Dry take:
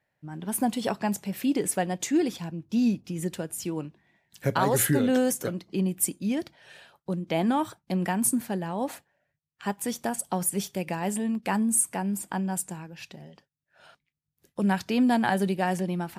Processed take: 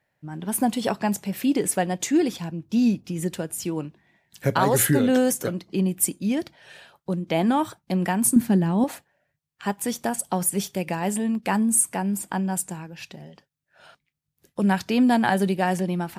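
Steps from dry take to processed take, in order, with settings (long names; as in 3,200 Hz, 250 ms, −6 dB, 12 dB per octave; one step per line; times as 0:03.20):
0:08.36–0:08.84: low shelf with overshoot 380 Hz +7.5 dB, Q 1.5
level +3.5 dB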